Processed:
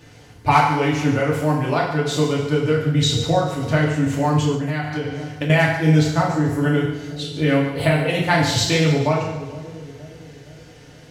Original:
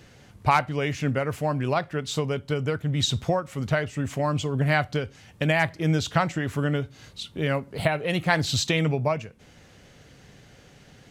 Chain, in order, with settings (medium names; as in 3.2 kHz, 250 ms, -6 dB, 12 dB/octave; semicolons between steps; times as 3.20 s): 6.03–6.61 s: peaking EQ 3 kHz -13.5 dB 1.5 oct; two-band feedback delay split 570 Hz, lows 467 ms, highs 145 ms, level -13 dB; FDN reverb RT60 0.81 s, low-frequency decay 0.8×, high-frequency decay 0.95×, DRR -4.5 dB; 4.54–5.50 s: compression 6:1, threshold -21 dBFS, peak gain reduction 10.5 dB